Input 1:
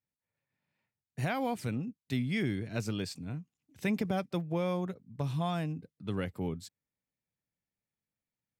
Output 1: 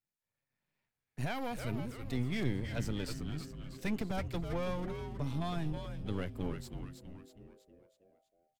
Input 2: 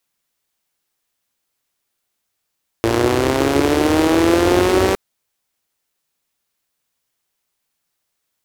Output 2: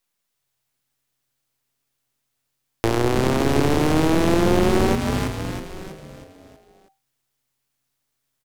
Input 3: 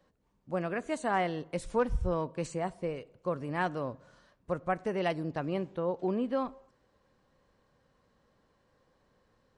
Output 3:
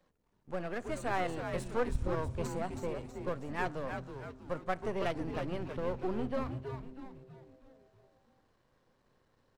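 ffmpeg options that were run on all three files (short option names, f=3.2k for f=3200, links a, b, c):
-filter_complex "[0:a]aeval=exprs='if(lt(val(0),0),0.251*val(0),val(0))':c=same,asplit=7[a][b][c][d][e][f][g];[b]adelay=322,afreqshift=-130,volume=-6.5dB[h];[c]adelay=644,afreqshift=-260,volume=-12.7dB[i];[d]adelay=966,afreqshift=-390,volume=-18.9dB[j];[e]adelay=1288,afreqshift=-520,volume=-25.1dB[k];[f]adelay=1610,afreqshift=-650,volume=-31.3dB[l];[g]adelay=1932,afreqshift=-780,volume=-37.5dB[m];[a][h][i][j][k][l][m]amix=inputs=7:normalize=0,acrossover=split=440[n][o];[o]acompressor=threshold=-22dB:ratio=4[p];[n][p]amix=inputs=2:normalize=0"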